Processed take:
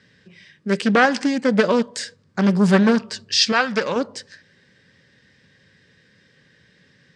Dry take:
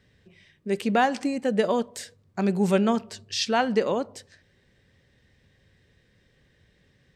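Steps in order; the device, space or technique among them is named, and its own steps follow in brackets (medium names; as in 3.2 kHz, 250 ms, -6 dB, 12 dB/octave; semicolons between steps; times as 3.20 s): full-range speaker at full volume (loudspeaker Doppler distortion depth 0.46 ms; cabinet simulation 150–8500 Hz, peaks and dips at 170 Hz +3 dB, 370 Hz -4 dB, 700 Hz -8 dB, 1.6 kHz +6 dB, 4.9 kHz +6 dB); 3.52–3.96 s: peaking EQ 280 Hz -9 dB 1.8 oct; trim +7.5 dB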